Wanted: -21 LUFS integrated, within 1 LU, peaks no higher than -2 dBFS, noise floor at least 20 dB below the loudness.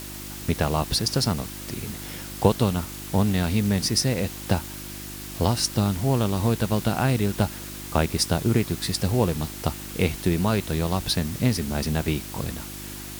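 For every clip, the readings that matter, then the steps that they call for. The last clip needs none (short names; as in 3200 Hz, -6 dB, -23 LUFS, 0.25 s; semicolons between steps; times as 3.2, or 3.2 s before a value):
hum 50 Hz; harmonics up to 350 Hz; hum level -39 dBFS; noise floor -37 dBFS; noise floor target -45 dBFS; loudness -25.0 LUFS; peak -3.0 dBFS; loudness target -21.0 LUFS
-> de-hum 50 Hz, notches 7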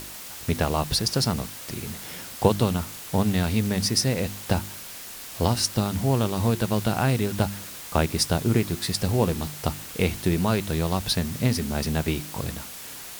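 hum none; noise floor -39 dBFS; noise floor target -46 dBFS
-> denoiser 7 dB, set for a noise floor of -39 dBFS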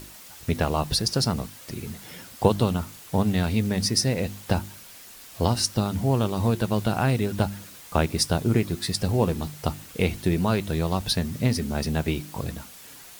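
noise floor -46 dBFS; loudness -25.5 LUFS; peak -3.5 dBFS; loudness target -21.0 LUFS
-> gain +4.5 dB; limiter -2 dBFS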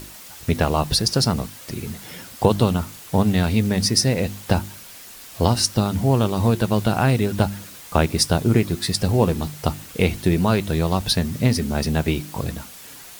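loudness -21.0 LUFS; peak -2.0 dBFS; noise floor -41 dBFS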